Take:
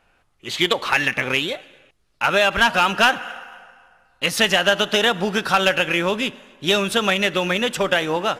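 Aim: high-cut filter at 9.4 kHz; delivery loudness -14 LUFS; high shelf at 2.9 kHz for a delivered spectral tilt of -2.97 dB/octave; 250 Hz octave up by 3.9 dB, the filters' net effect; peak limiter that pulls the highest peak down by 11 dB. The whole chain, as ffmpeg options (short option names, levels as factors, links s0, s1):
-af "lowpass=9400,equalizer=f=250:t=o:g=5.5,highshelf=f=2900:g=-6,volume=4.22,alimiter=limit=0.631:level=0:latency=1"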